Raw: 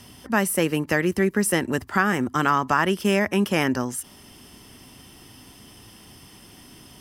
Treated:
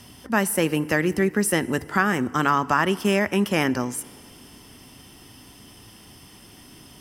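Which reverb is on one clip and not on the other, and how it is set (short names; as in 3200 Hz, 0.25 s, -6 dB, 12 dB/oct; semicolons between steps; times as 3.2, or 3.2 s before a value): FDN reverb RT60 2.3 s, low-frequency decay 0.9×, high-frequency decay 0.7×, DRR 18 dB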